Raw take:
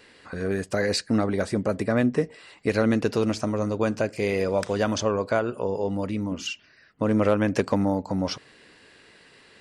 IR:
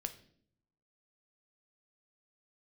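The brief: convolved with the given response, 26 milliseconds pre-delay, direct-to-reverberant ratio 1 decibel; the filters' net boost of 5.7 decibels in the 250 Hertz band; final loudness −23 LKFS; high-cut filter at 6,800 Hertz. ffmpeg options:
-filter_complex "[0:a]lowpass=6800,equalizer=frequency=250:width_type=o:gain=7,asplit=2[link_01][link_02];[1:a]atrim=start_sample=2205,adelay=26[link_03];[link_02][link_03]afir=irnorm=-1:irlink=0,volume=0.5dB[link_04];[link_01][link_04]amix=inputs=2:normalize=0,volume=-3.5dB"

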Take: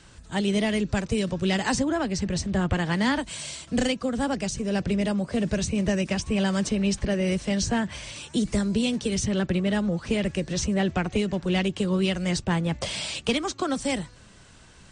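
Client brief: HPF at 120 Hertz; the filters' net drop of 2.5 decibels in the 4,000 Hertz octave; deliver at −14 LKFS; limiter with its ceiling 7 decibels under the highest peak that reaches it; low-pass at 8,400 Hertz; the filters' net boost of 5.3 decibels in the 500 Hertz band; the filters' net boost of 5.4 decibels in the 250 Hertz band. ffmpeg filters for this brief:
ffmpeg -i in.wav -af "highpass=120,lowpass=8400,equalizer=frequency=250:width_type=o:gain=7,equalizer=frequency=500:width_type=o:gain=4.5,equalizer=frequency=4000:width_type=o:gain=-3.5,volume=10dB,alimiter=limit=-4.5dB:level=0:latency=1" out.wav

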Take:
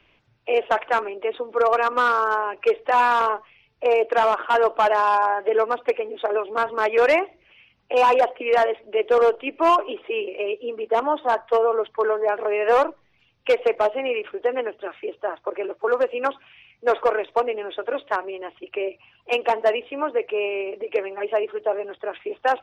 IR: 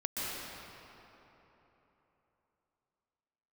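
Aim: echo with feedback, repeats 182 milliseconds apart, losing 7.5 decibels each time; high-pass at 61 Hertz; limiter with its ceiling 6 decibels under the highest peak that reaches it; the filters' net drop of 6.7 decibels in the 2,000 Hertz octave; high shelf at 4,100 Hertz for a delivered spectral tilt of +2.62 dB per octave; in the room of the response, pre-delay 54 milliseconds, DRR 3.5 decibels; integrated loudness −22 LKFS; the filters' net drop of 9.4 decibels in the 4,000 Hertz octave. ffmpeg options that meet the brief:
-filter_complex "[0:a]highpass=61,equalizer=frequency=2000:width_type=o:gain=-6.5,equalizer=frequency=4000:width_type=o:gain=-6.5,highshelf=frequency=4100:gain=-7.5,alimiter=limit=-17dB:level=0:latency=1,aecho=1:1:182|364|546|728|910:0.422|0.177|0.0744|0.0312|0.0131,asplit=2[link_01][link_02];[1:a]atrim=start_sample=2205,adelay=54[link_03];[link_02][link_03]afir=irnorm=-1:irlink=0,volume=-9dB[link_04];[link_01][link_04]amix=inputs=2:normalize=0,volume=2.5dB"

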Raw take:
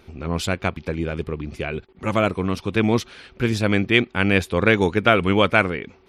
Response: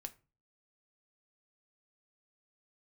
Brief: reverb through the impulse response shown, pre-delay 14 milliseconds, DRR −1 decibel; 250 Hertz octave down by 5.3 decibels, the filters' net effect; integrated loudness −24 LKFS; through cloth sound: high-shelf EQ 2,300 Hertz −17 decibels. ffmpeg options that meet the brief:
-filter_complex "[0:a]equalizer=frequency=250:width_type=o:gain=-7,asplit=2[link_01][link_02];[1:a]atrim=start_sample=2205,adelay=14[link_03];[link_02][link_03]afir=irnorm=-1:irlink=0,volume=5.5dB[link_04];[link_01][link_04]amix=inputs=2:normalize=0,highshelf=frequency=2300:gain=-17,volume=-2dB"

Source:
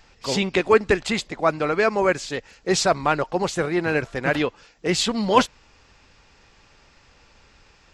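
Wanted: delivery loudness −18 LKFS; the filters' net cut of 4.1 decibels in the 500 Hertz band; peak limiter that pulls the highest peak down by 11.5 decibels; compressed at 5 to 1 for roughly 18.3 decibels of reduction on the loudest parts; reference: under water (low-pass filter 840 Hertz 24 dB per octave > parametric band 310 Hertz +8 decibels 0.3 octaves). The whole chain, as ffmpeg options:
ffmpeg -i in.wav -af "equalizer=frequency=500:width_type=o:gain=-6.5,acompressor=threshold=-35dB:ratio=5,alimiter=level_in=5.5dB:limit=-24dB:level=0:latency=1,volume=-5.5dB,lowpass=frequency=840:width=0.5412,lowpass=frequency=840:width=1.3066,equalizer=frequency=310:width_type=o:width=0.3:gain=8,volume=23.5dB" out.wav

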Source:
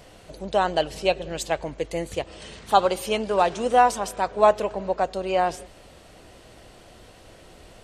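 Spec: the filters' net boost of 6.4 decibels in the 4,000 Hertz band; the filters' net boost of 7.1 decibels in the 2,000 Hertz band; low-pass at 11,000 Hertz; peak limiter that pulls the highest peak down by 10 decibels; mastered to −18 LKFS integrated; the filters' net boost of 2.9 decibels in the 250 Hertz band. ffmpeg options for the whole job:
ffmpeg -i in.wav -af "lowpass=11000,equalizer=frequency=250:width_type=o:gain=4,equalizer=frequency=2000:width_type=o:gain=8.5,equalizer=frequency=4000:width_type=o:gain=5,volume=7.5dB,alimiter=limit=-3.5dB:level=0:latency=1" out.wav

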